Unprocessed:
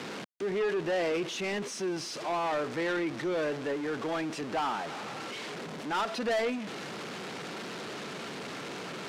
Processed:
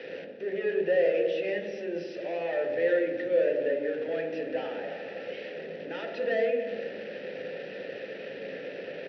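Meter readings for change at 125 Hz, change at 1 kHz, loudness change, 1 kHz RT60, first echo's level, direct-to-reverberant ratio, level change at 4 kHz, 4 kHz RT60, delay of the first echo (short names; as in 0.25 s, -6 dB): -6.5 dB, -9.0 dB, +2.5 dB, 1.0 s, -15.0 dB, 2.5 dB, -7.5 dB, 0.80 s, 0.279 s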